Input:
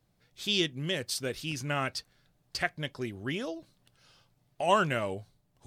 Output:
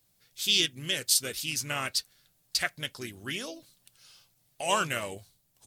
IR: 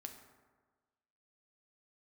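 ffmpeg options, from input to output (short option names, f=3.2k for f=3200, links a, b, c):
-filter_complex "[0:a]crystalizer=i=6.5:c=0,asplit=2[a][b];[b]asetrate=37084,aresample=44100,atempo=1.18921,volume=-11dB[c];[a][c]amix=inputs=2:normalize=0,volume=-6dB"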